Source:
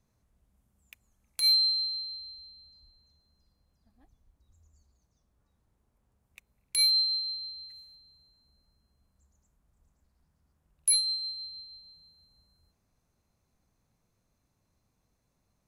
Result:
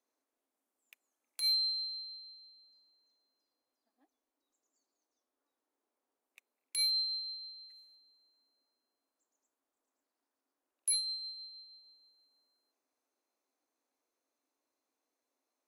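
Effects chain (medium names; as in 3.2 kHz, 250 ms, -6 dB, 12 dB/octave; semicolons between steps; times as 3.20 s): elliptic high-pass 270 Hz, stop band 40 dB; trim -6.5 dB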